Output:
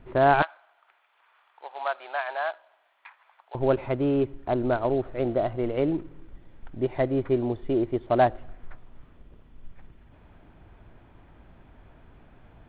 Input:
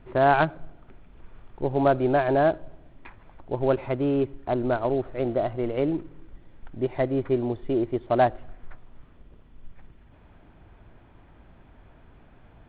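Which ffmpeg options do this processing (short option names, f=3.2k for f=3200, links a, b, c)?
-filter_complex "[0:a]asettb=1/sr,asplit=3[a][b][c];[a]atrim=end=0.424[d];[b]atrim=start=0.42:end=3.55,asetpts=PTS-STARTPTS,afade=t=in:d=0.004:c=qsin,afade=t=out:st=3.126:d=0.004:c=qsin,highpass=f=850:w=0.5412,highpass=f=850:w=1.3066[e];[c]atrim=start=3.546[f];[d][e]acrossfade=d=0.004:c1=hsin:c2=qsin[g];[g][f]acrossfade=d=0.004:c1=qsin:c2=hsin"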